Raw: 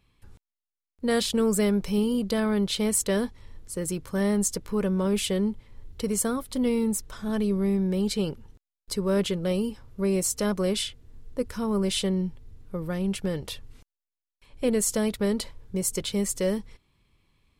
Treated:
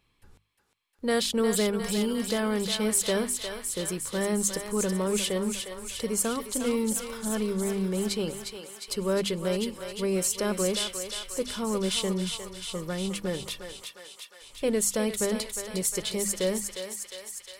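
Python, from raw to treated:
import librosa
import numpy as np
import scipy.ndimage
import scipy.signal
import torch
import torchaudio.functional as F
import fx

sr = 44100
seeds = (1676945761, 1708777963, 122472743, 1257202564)

y = fx.low_shelf(x, sr, hz=220.0, db=-6.0)
y = fx.hum_notches(y, sr, base_hz=50, count=5)
y = fx.echo_thinned(y, sr, ms=356, feedback_pct=74, hz=720.0, wet_db=-5.5)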